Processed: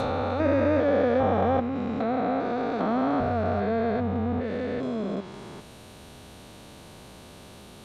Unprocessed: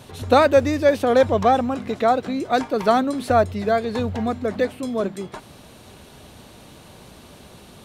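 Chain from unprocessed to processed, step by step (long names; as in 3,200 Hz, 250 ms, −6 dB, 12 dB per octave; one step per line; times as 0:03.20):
spectrum averaged block by block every 400 ms
treble cut that deepens with the level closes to 2,500 Hz, closed at −23 dBFS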